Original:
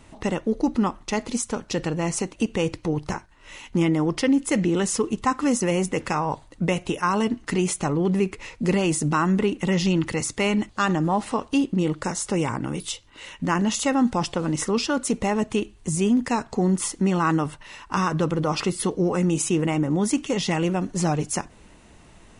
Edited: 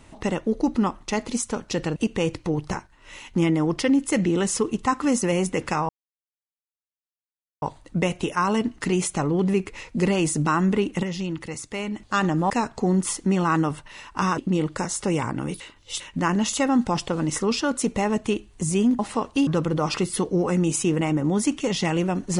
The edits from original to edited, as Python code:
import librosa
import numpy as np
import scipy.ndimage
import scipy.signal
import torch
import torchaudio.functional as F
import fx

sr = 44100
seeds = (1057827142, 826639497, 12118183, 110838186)

y = fx.edit(x, sr, fx.cut(start_s=1.96, length_s=0.39),
    fx.insert_silence(at_s=6.28, length_s=1.73),
    fx.clip_gain(start_s=9.69, length_s=0.97, db=-7.5),
    fx.swap(start_s=11.16, length_s=0.48, other_s=16.25, other_length_s=1.88),
    fx.reverse_span(start_s=12.86, length_s=0.4), tone=tone)